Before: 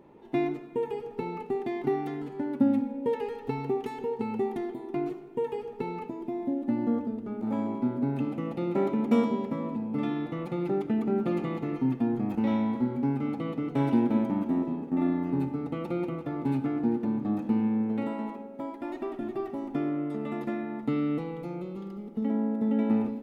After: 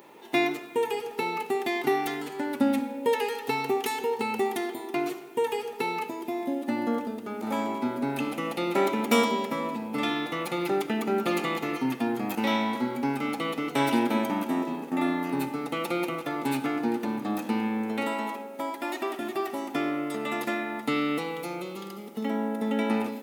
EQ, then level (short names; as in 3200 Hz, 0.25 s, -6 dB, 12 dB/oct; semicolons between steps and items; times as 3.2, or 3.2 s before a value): tilt +4.5 dB/oct; low shelf 110 Hz -7.5 dB; +8.5 dB